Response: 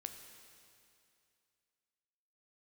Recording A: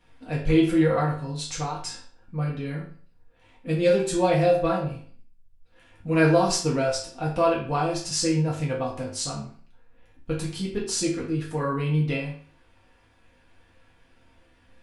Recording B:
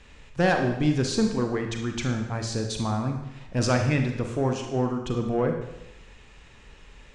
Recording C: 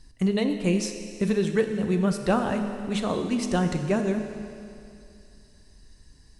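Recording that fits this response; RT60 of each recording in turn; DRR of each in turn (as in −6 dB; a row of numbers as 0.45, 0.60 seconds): C; 0.45, 0.90, 2.5 seconds; −5.5, 3.5, 5.5 decibels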